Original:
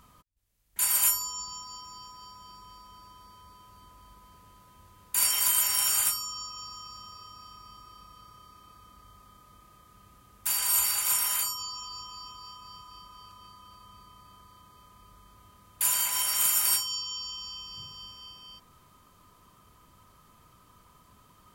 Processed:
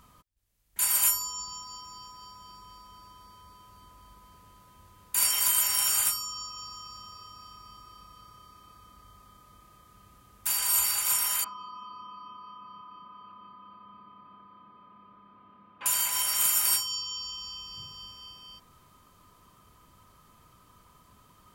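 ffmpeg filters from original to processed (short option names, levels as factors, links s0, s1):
-filter_complex "[0:a]asettb=1/sr,asplit=3[s0][s1][s2];[s0]atrim=end=11.444[s3];[s1]atrim=start=11.44:end=15.86,asetpts=PTS-STARTPTS,afade=t=in:d=0.004:c=qsin,afade=t=out:st=4.416:d=0.004:c=qsin,highpass=190,equalizer=f=210:t=q:w=4:g=9,equalizer=f=300:t=q:w=4:g=3,equalizer=f=1100:t=q:w=4:g=5,equalizer=f=1900:t=q:w=4:g=-5,lowpass=f=2600:w=0.5412,lowpass=f=2600:w=1.3066[s4];[s2]atrim=start=15.856[s5];[s3][s4]acrossfade=d=0.004:c1=hsin:c2=qsin[s6];[s6][s5]acrossfade=d=0.004:c1=qsin:c2=hsin"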